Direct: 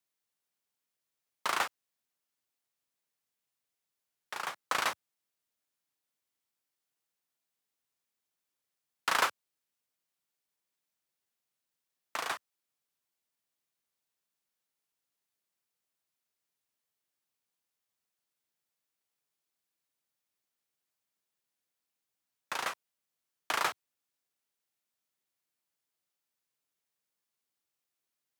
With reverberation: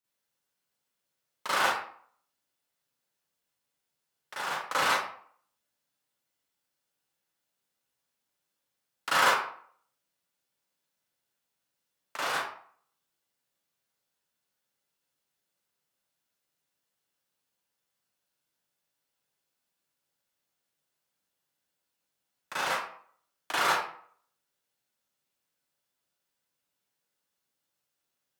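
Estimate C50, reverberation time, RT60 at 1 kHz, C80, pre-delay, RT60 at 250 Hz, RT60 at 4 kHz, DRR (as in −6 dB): −2.0 dB, 0.55 s, 0.55 s, 4.0 dB, 35 ms, 0.55 s, 0.35 s, −10.5 dB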